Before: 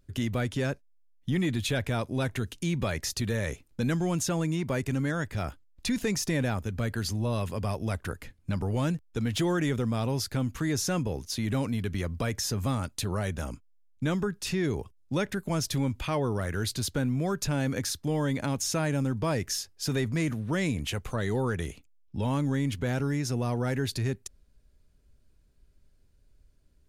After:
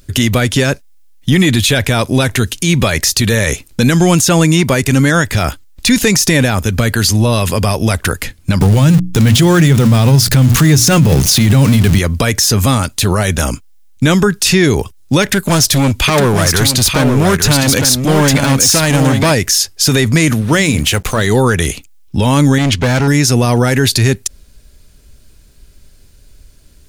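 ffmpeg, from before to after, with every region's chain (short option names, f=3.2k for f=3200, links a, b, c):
-filter_complex "[0:a]asettb=1/sr,asplit=3[a][b][c];[a]atrim=end=8.614[d];[b]atrim=start=8.61:end=11.99,asetpts=PTS-STARTPTS,afade=t=in:d=0.004:c=qsin,afade=t=out:st=3.376:d=0.004:c=qsin,aeval=exprs='val(0)+0.5*0.0158*sgn(val(0))':c=same,equalizer=f=140:w=1.3:g=11.5,bandreject=f=60:t=h:w=6,bandreject=f=120:t=h:w=6,bandreject=f=180:t=h:w=6,bandreject=f=240:t=h:w=6,bandreject=f=300:t=h:w=6[e];[c]atrim=start=11.986[f];[d][e]acrossfade=d=0.004:c1=hsin:c2=qsin[g];[g][f]acrossfade=d=0.004:c1=qsin:c2=hsin,asettb=1/sr,asplit=3[h][i][j];[h]atrim=end=15.224[k];[i]atrim=start=15.22:end=19.31,asetpts=PTS-STARTPTS,afade=t=in:d=0.004:c=qsin,afade=t=out:st=4.086:d=0.004:c=qsin,asoftclip=type=hard:threshold=-27dB,aecho=1:1:858:0.501,atrim=end_sample=180369[l];[j]atrim=start=19.306[m];[k][l]acrossfade=d=0.004:c1=hsin:c2=qsin[n];[n][m]acrossfade=d=0.004:c1=qsin:c2=hsin,asettb=1/sr,asplit=3[o][p][q];[o]atrim=end=20.414[r];[p]atrim=start=20.41:end=21.27,asetpts=PTS-STARTPTS,afade=t=in:d=0.004:c=qsin,afade=t=out:st=0.856:d=0.004:c=qsin,bandreject=f=60:t=h:w=6,bandreject=f=120:t=h:w=6,bandreject=f=180:t=h:w=6,bandreject=f=240:t=h:w=6,aeval=exprs='sgn(val(0))*max(abs(val(0))-0.00237,0)':c=same[s];[q]atrim=start=21.266[t];[r][s]acrossfade=d=0.004:c1=hsin:c2=qsin[u];[u][t]acrossfade=d=0.004:c1=qsin:c2=hsin,asettb=1/sr,asplit=3[v][w][x];[v]atrim=end=22.584[y];[w]atrim=start=22.58:end=23.08,asetpts=PTS-STARTPTS,afade=t=in:d=0.004:c=qsin,afade=t=out:st=0.496:d=0.004:c=qsin,lowpass=6.1k,asoftclip=type=hard:threshold=-28.5dB[z];[x]atrim=start=23.076[aa];[y][z]acrossfade=d=0.004:c1=hsin:c2=qsin[ab];[ab][aa]acrossfade=d=0.004:c1=qsin:c2=hsin,deesser=0.6,highshelf=f=2.2k:g=10,alimiter=level_in=20dB:limit=-1dB:release=50:level=0:latency=1,volume=-1dB"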